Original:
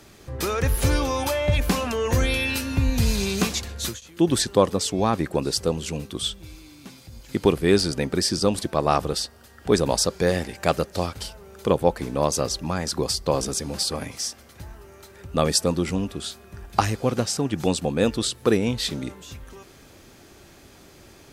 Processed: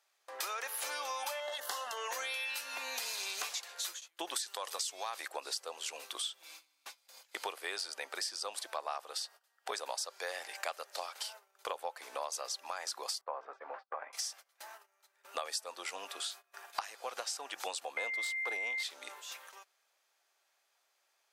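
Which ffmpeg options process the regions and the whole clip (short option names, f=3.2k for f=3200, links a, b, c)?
-filter_complex "[0:a]asettb=1/sr,asplit=3[a][b][c];[a]atrim=end=1.404[d];[b]atrim=start=1.4:end=1.97,asetpts=PTS-STARTPTS,afade=t=in:d=0.004:c=qsin,afade=t=out:st=0.566:d=0.004:c=qsin,aeval=exprs='if(lt(val(0),0),0.708*val(0),val(0))':c=same,asuperstop=centerf=2400:order=4:qfactor=3.3[e];[c]atrim=start=1.966[f];[d][e]acrossfade=d=0.004:c1=hsin:c2=qsin[g];[g][f]acrossfade=d=0.004:c1=qsin:c2=hsin,asettb=1/sr,asplit=3[h][i][j];[h]atrim=end=4.364[k];[i]atrim=start=4.36:end=5.28,asetpts=PTS-STARTPTS,afade=t=in:d=0.004:c=qsin,afade=t=out:st=0.916:d=0.004:c=qsin,highshelf=f=2.2k:g=12,acompressor=threshold=-16dB:ratio=6:attack=3.2:release=140:knee=1:detection=peak[l];[j]atrim=start=5.276[m];[k][l]acrossfade=d=0.004:c1=hsin:c2=qsin[n];[n][m]acrossfade=d=0.004:c1=qsin:c2=hsin,asettb=1/sr,asplit=3[o][p][q];[o]atrim=end=13.214[r];[p]atrim=start=13.21:end=14.13,asetpts=PTS-STARTPTS,afade=t=in:d=0.004:c=qsin,afade=t=out:st=0.916:d=0.004:c=qsin,lowpass=f=1.6k:w=0.5412,lowpass=f=1.6k:w=1.3066,agate=range=-33dB:threshold=-32dB:ratio=3:release=100:detection=peak,aemphasis=mode=production:type=bsi[s];[q]atrim=start=14.126[t];[r][s]acrossfade=d=0.004:c1=hsin:c2=qsin[u];[u][t]acrossfade=d=0.004:c1=qsin:c2=hsin,asettb=1/sr,asplit=3[v][w][x];[v]atrim=end=17.974[y];[w]atrim=start=17.97:end=18.83,asetpts=PTS-STARTPTS,afade=t=in:d=0.004:c=qsin,afade=t=out:st=0.856:d=0.004:c=qsin,aeval=exprs='if(lt(val(0),0),0.447*val(0),val(0))':c=same,lowshelf=f=490:g=9,aeval=exprs='val(0)+0.0891*sin(2*PI*2100*n/s)':c=same[z];[x]atrim=start=18.826[aa];[y][z]acrossfade=d=0.004:c1=hsin:c2=qsin[ab];[ab][aa]acrossfade=d=0.004:c1=qsin:c2=hsin,agate=range=-24dB:threshold=-41dB:ratio=16:detection=peak,highpass=f=680:w=0.5412,highpass=f=680:w=1.3066,acompressor=threshold=-38dB:ratio=5,volume=1dB"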